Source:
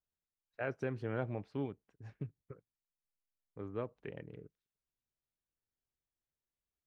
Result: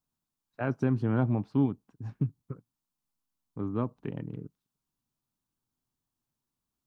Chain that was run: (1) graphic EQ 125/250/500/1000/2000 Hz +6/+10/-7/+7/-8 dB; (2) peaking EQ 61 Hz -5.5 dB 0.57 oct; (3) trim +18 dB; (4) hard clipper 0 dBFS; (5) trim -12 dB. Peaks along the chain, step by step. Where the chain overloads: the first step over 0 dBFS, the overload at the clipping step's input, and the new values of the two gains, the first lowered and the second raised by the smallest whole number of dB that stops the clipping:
-21.0 dBFS, -21.0 dBFS, -3.0 dBFS, -3.0 dBFS, -15.0 dBFS; nothing clips

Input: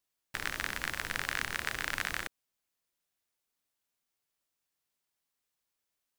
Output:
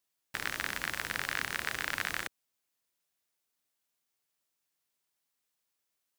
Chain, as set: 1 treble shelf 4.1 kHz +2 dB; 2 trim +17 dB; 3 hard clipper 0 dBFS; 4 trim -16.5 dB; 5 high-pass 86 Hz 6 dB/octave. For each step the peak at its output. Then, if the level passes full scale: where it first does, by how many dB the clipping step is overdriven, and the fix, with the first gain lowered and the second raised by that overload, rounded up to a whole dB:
-10.5 dBFS, +6.5 dBFS, 0.0 dBFS, -16.5 dBFS, -16.0 dBFS; step 2, 6.5 dB; step 2 +10 dB, step 4 -9.5 dB

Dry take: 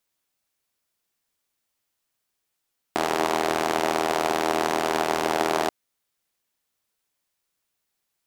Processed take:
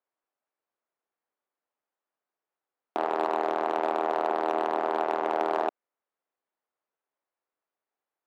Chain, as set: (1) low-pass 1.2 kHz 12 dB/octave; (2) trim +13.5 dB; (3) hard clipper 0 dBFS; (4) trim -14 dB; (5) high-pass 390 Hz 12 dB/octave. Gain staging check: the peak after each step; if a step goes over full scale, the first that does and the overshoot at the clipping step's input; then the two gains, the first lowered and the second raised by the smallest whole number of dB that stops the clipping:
-9.0 dBFS, +4.5 dBFS, 0.0 dBFS, -14.0 dBFS, -11.5 dBFS; step 2, 4.5 dB; step 2 +8.5 dB, step 4 -9 dB

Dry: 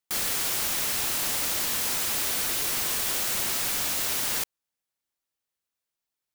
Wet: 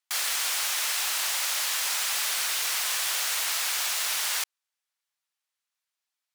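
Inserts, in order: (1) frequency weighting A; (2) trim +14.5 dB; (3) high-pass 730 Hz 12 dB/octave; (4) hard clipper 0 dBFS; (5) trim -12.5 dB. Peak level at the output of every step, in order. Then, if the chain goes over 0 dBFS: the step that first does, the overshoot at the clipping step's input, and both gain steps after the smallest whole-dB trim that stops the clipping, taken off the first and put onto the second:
-17.0 dBFS, -2.5 dBFS, -2.5 dBFS, -2.5 dBFS, -15.0 dBFS; nothing clips

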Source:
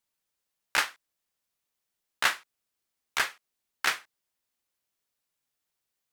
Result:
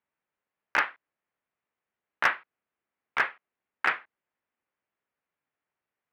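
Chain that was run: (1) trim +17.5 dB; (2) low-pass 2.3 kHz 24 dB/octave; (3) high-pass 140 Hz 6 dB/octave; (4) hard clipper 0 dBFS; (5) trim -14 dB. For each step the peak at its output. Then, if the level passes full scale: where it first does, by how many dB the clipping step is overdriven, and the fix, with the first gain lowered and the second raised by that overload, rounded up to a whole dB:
+7.5 dBFS, +5.0 dBFS, +5.0 dBFS, 0.0 dBFS, -14.0 dBFS; step 1, 5.0 dB; step 1 +12.5 dB, step 5 -9 dB

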